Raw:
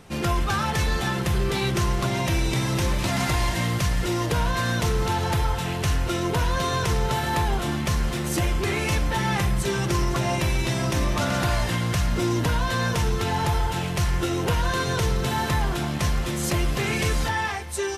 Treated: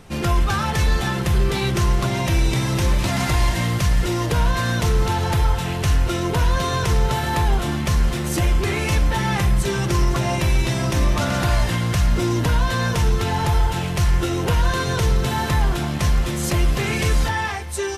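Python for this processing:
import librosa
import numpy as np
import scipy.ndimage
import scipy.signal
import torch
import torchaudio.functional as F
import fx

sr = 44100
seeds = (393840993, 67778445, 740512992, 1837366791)

y = fx.low_shelf(x, sr, hz=69.0, db=7.5)
y = y * librosa.db_to_amplitude(2.0)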